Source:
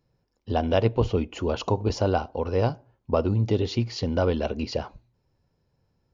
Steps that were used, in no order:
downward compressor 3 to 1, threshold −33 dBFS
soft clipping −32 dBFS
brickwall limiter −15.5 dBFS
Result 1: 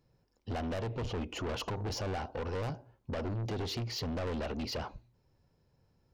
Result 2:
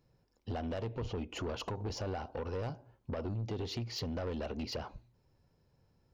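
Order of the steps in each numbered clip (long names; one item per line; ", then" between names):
brickwall limiter, then soft clipping, then downward compressor
brickwall limiter, then downward compressor, then soft clipping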